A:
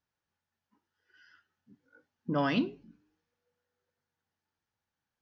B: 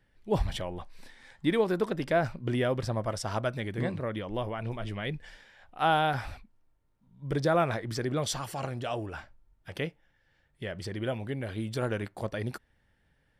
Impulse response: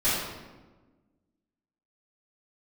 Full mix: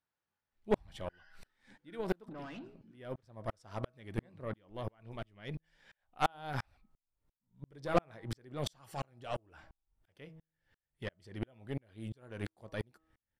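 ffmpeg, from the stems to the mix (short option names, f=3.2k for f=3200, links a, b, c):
-filter_complex "[0:a]lowshelf=f=260:g=11.5,acompressor=threshold=-31dB:ratio=6,asplit=2[a][b];[b]highpass=f=720:p=1,volume=20dB,asoftclip=type=tanh:threshold=-23dB[c];[a][c]amix=inputs=2:normalize=0,lowpass=f=2.7k:p=1,volume=-6dB,volume=-15.5dB,asplit=2[d][e];[1:a]bandreject=f=160:t=h:w=4,bandreject=f=320:t=h:w=4,bandreject=f=480:t=h:w=4,bandreject=f=640:t=h:w=4,bandreject=f=800:t=h:w=4,bandreject=f=960:t=h:w=4,bandreject=f=1.12k:t=h:w=4,bandreject=f=1.28k:t=h:w=4,aeval=exprs='val(0)*pow(10,-39*if(lt(mod(-2.9*n/s,1),2*abs(-2.9)/1000),1-mod(-2.9*n/s,1)/(2*abs(-2.9)/1000),(mod(-2.9*n/s,1)-2*abs(-2.9)/1000)/(1-2*abs(-2.9)/1000))/20)':c=same,adelay=400,volume=0dB[f];[e]apad=whole_len=608430[g];[f][g]sidechaincompress=threshold=-56dB:ratio=8:attack=8.5:release=1300[h];[d][h]amix=inputs=2:normalize=0,aeval=exprs='0.2*(cos(1*acos(clip(val(0)/0.2,-1,1)))-cos(1*PI/2))+0.0178*(cos(8*acos(clip(val(0)/0.2,-1,1)))-cos(8*PI/2))':c=same"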